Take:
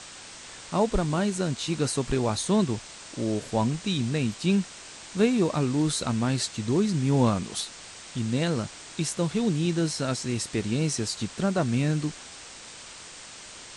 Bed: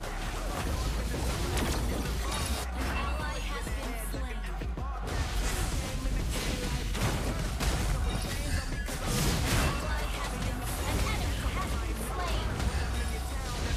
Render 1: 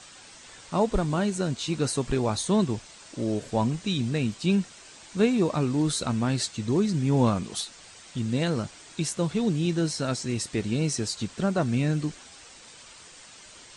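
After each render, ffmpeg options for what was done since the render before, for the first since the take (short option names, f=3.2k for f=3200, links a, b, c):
-af "afftdn=nr=7:nf=-44"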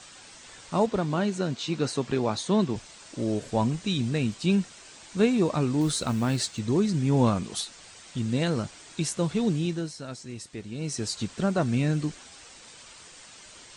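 -filter_complex "[0:a]asettb=1/sr,asplit=3[a][b][c];[a]atrim=end=0.864[d];[b]atrim=start=0.86:end=2.76,asetpts=PTS-STARTPTS,afade=t=in:d=0.004:c=qsin,afade=t=out:st=1.896:d=0.004:c=qsin,highpass=130,lowpass=6k[e];[c]atrim=start=2.756[f];[d][e]acrossfade=d=0.004:c1=hsin:c2=qsin[g];[g][f]acrossfade=d=0.004:c1=qsin:c2=hsin,asettb=1/sr,asplit=3[h][i][j];[h]atrim=end=5.814[k];[i]atrim=start=5.81:end=6.59,asetpts=PTS-STARTPTS,afade=t=in:d=0.004:c=qsin,afade=t=out:st=0.776:d=0.004:c=qsin,acrusher=bits=7:mode=log:mix=0:aa=0.000001[l];[j]atrim=start=6.586[m];[k][l]acrossfade=d=0.004:c1=hsin:c2=qsin[n];[n][m]acrossfade=d=0.004:c1=qsin:c2=hsin,asplit=3[o][p][q];[o]atrim=end=9.92,asetpts=PTS-STARTPTS,afade=t=out:st=9.53:d=0.39:silence=0.316228[r];[p]atrim=start=9.92:end=10.74,asetpts=PTS-STARTPTS,volume=-10dB[s];[q]atrim=start=10.74,asetpts=PTS-STARTPTS,afade=t=in:d=0.39:silence=0.316228[t];[r][s][t]concat=n=3:v=0:a=1"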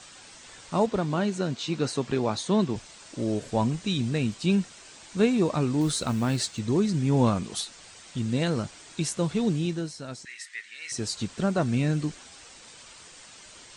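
-filter_complex "[0:a]asettb=1/sr,asplit=3[a][b][c];[a]atrim=end=10.254[d];[b]atrim=start=10.25:end=10.92,asetpts=PTS-STARTPTS,afade=t=in:d=0.004:c=qsin,afade=t=out:st=0.666:d=0.004:c=qsin,highpass=f=1.9k:t=q:w=7.1[e];[c]atrim=start=10.916[f];[d][e]acrossfade=d=0.004:c1=hsin:c2=qsin[g];[g][f]acrossfade=d=0.004:c1=qsin:c2=hsin"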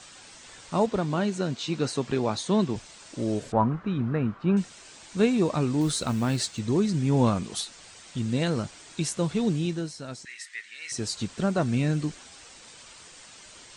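-filter_complex "[0:a]asettb=1/sr,asplit=3[a][b][c];[a]atrim=end=3.524[d];[b]atrim=start=3.52:end=4.57,asetpts=PTS-STARTPTS,afade=t=in:d=0.004:c=qsin,afade=t=out:st=1.046:d=0.004:c=qsin,lowpass=f=1.3k:t=q:w=3.4[e];[c]atrim=start=4.566[f];[d][e]acrossfade=d=0.004:c1=hsin:c2=qsin[g];[g][f]acrossfade=d=0.004:c1=qsin:c2=hsin"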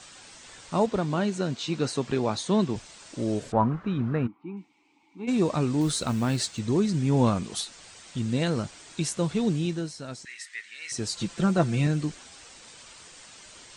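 -filter_complex "[0:a]asplit=3[a][b][c];[a]afade=t=out:st=4.26:d=0.02[d];[b]asplit=3[e][f][g];[e]bandpass=f=300:t=q:w=8,volume=0dB[h];[f]bandpass=f=870:t=q:w=8,volume=-6dB[i];[g]bandpass=f=2.24k:t=q:w=8,volume=-9dB[j];[h][i][j]amix=inputs=3:normalize=0,afade=t=in:st=4.26:d=0.02,afade=t=out:st=5.27:d=0.02[k];[c]afade=t=in:st=5.27:d=0.02[l];[d][k][l]amix=inputs=3:normalize=0,asettb=1/sr,asplit=3[m][n][o];[m]atrim=end=11.164[p];[n]atrim=start=11.16:end=11.87,asetpts=PTS-STARTPTS,afade=t=in:d=0.004:c=qsin,afade=t=out:st=0.706:d=0.004:c=qsin,aecho=1:1:5.9:0.65,atrim=end_sample=31311[q];[o]atrim=start=11.866[r];[p][q]acrossfade=d=0.004:c1=hsin:c2=qsin[s];[s][r]acrossfade=d=0.004:c1=qsin:c2=hsin"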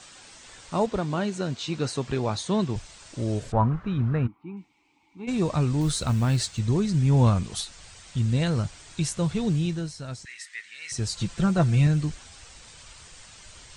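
-af "asubboost=boost=5.5:cutoff=110"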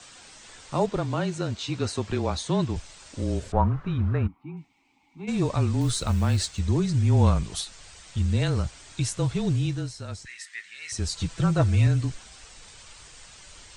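-af "afreqshift=-26"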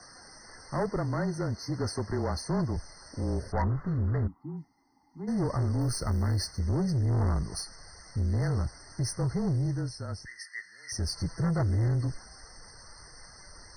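-af "asoftclip=type=tanh:threshold=-23.5dB,afftfilt=real='re*eq(mod(floor(b*sr/1024/2100),2),0)':imag='im*eq(mod(floor(b*sr/1024/2100),2),0)':win_size=1024:overlap=0.75"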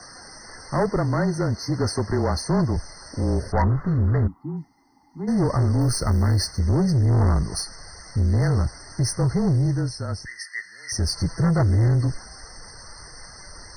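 -af "volume=8dB"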